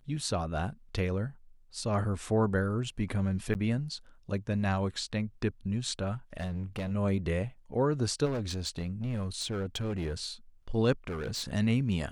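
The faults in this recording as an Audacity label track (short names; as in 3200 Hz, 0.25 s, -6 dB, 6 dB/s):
3.540000	3.550000	gap 9.4 ms
6.370000	6.920000	clipped -30.5 dBFS
8.250000	10.260000	clipped -29 dBFS
11.070000	11.500000	clipped -31.5 dBFS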